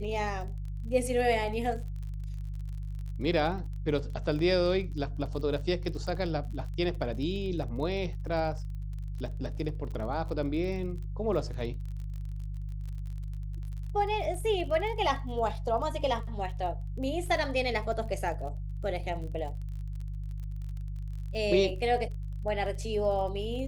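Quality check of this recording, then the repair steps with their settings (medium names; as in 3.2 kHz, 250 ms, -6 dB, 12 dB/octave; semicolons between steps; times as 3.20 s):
crackle 36 per s -39 dBFS
hum 50 Hz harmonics 3 -36 dBFS
4.39 s: dropout 2.1 ms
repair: de-click; de-hum 50 Hz, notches 3; interpolate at 4.39 s, 2.1 ms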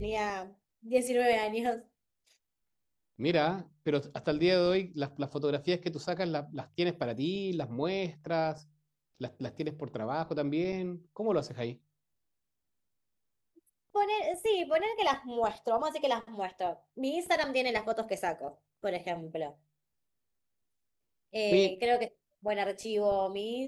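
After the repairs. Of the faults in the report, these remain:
nothing left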